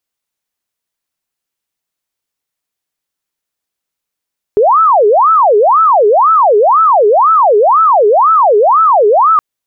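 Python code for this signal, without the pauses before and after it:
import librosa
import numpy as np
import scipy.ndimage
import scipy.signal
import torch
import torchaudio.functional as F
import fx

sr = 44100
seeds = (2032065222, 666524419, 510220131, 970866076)

y = fx.siren(sr, length_s=4.82, kind='wail', low_hz=407.0, high_hz=1320.0, per_s=2.0, wave='sine', level_db=-4.5)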